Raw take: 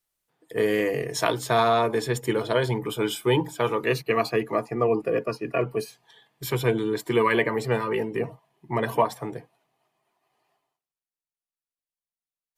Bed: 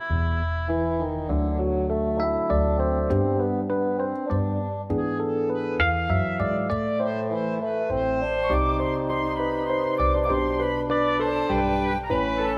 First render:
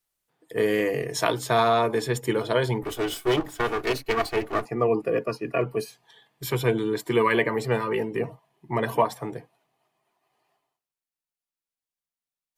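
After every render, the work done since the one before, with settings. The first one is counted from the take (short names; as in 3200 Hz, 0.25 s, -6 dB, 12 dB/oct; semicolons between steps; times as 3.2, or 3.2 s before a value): 2.82–4.65 minimum comb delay 2.7 ms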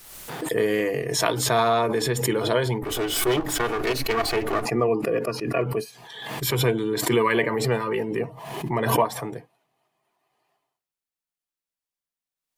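backwards sustainer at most 47 dB/s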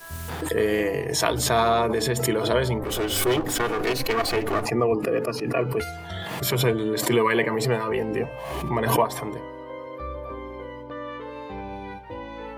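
add bed -12.5 dB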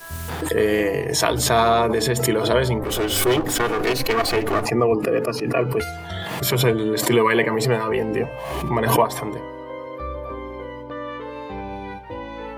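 gain +3.5 dB; limiter -1 dBFS, peak gain reduction 1.5 dB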